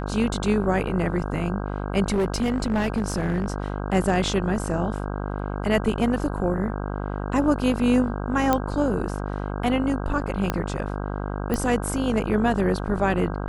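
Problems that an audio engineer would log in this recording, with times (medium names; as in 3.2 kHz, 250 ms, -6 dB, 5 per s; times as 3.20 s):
buzz 50 Hz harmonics 32 -29 dBFS
2.12–3.52 s: clipped -18.5 dBFS
8.53 s: pop -7 dBFS
10.50 s: pop -9 dBFS
11.54 s: pop -12 dBFS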